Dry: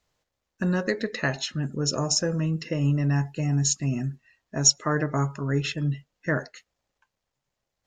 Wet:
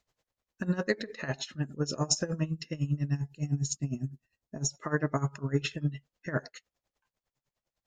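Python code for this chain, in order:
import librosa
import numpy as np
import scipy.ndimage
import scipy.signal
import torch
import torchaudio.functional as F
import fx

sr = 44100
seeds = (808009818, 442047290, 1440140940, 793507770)

y = fx.peak_eq(x, sr, hz=fx.line((2.48, 680.0), (4.73, 2400.0)), db=-13.0, octaves=2.6, at=(2.48, 4.73), fade=0.02)
y = y * 10.0 ** (-18 * (0.5 - 0.5 * np.cos(2.0 * np.pi * 9.9 * np.arange(len(y)) / sr)) / 20.0)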